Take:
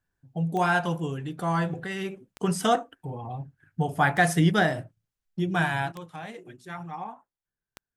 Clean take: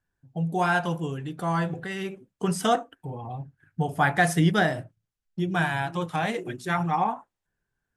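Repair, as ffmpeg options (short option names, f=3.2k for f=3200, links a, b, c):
-af "adeclick=t=4,asetnsamples=n=441:p=0,asendcmd='5.92 volume volume 12dB',volume=0dB"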